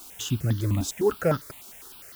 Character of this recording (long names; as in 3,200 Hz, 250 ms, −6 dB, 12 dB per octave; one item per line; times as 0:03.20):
sample-and-hold tremolo 4.2 Hz, depth 55%
a quantiser's noise floor 8 bits, dither triangular
notches that jump at a steady rate 9.9 Hz 490–2,400 Hz